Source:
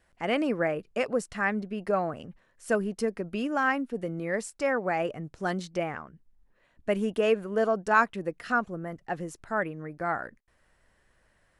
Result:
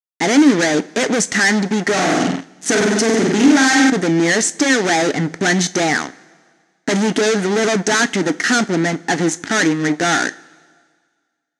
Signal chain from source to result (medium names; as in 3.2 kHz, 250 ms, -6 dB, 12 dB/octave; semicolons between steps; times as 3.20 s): peaking EQ 1.7 kHz +3.5 dB 0.62 oct; 1.92–3.90 s: flutter echo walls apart 8.3 m, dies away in 0.7 s; fuzz box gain 41 dB, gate -45 dBFS; cabinet simulation 180–8900 Hz, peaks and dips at 280 Hz +10 dB, 550 Hz -8 dB, 1.1 kHz -8 dB, 1.9 kHz +4 dB, 2.7 kHz -4 dB, 6.3 kHz +9 dB; two-slope reverb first 0.25 s, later 1.8 s, from -18 dB, DRR 12.5 dB